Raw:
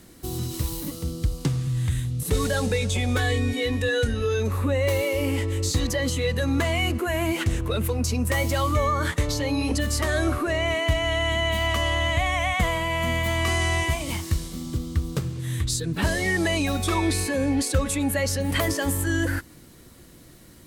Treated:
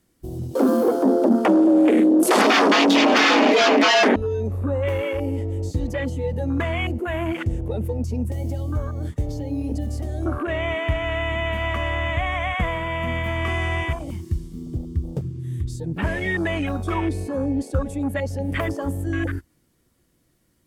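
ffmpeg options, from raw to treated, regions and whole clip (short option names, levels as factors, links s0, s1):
-filter_complex "[0:a]asettb=1/sr,asplit=3[s0][s1][s2];[s0]atrim=end=0.554[s3];[s1]atrim=start=0.55:end=4.16,asetpts=PTS-STARTPTS,afade=t=in:d=0.004:c=qsin,afade=t=out:st=3.606:d=0.004:c=qsin,bass=f=250:g=-1,treble=f=4000:g=-6,aeval=exprs='0.237*sin(PI/2*4.47*val(0)/0.237)':c=same,afreqshift=190[s4];[s2]atrim=start=4.156[s5];[s3][s4]acrossfade=d=0.004:c1=hsin:c2=qsin[s6];[s6][s5]acrossfade=d=0.004:c1=qsin:c2=hsin,asettb=1/sr,asplit=3[s7][s8][s9];[s7]atrim=end=8.274[s10];[s8]atrim=start=8.27:end=10.26,asetpts=PTS-STARTPTS,afade=t=in:d=0.004:c=qsin,afade=t=out:st=1.986:d=0.004:c=qsin,acrossover=split=360|3000[s11][s12][s13];[s12]acompressor=threshold=0.02:ratio=10:attack=3.2:release=140:knee=2.83:detection=peak[s14];[s11][s14][s13]amix=inputs=3:normalize=0,acrusher=bits=6:mode=log:mix=0:aa=0.000001[s15];[s9]atrim=start=10.256[s16];[s10][s15]acrossfade=d=0.004:c1=hsin:c2=qsin[s17];[s17][s16]acrossfade=d=0.004:c1=qsin:c2=hsin,afwtdn=0.0398,bandreject=f=4000:w=14"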